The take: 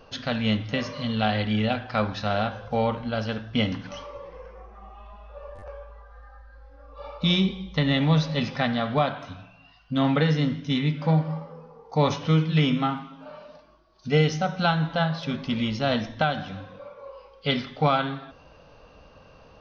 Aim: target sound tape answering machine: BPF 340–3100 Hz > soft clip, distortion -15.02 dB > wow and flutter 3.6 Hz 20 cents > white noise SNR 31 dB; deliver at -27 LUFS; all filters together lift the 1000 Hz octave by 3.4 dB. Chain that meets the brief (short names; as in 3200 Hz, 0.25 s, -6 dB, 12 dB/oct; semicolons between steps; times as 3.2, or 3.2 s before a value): BPF 340–3100 Hz; bell 1000 Hz +5 dB; soft clip -16 dBFS; wow and flutter 3.6 Hz 20 cents; white noise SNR 31 dB; gain +2 dB